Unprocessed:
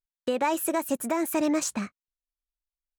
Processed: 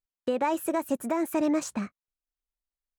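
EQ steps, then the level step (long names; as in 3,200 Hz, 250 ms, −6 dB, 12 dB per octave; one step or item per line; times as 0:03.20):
high-shelf EQ 2,100 Hz −8 dB
0.0 dB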